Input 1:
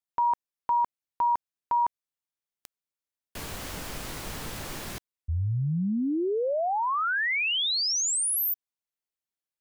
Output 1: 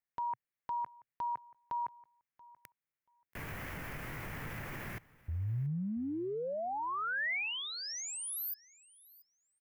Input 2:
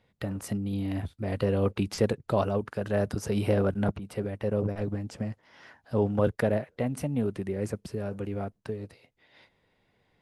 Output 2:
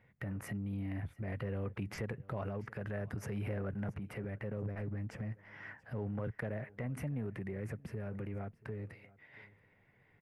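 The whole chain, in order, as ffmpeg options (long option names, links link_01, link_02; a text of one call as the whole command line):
ffmpeg -i in.wav -filter_complex "[0:a]equalizer=frequency=125:width_type=o:width=1:gain=8,equalizer=frequency=2000:width_type=o:width=1:gain=11,equalizer=frequency=4000:width_type=o:width=1:gain=-12,equalizer=frequency=8000:width_type=o:width=1:gain=-9,acompressor=threshold=-36dB:ratio=2.5:attack=0.42:release=67:knee=1:detection=peak,asplit=2[link_01][link_02];[link_02]aecho=0:1:682|1364:0.0794|0.0127[link_03];[link_01][link_03]amix=inputs=2:normalize=0,volume=-3dB" out.wav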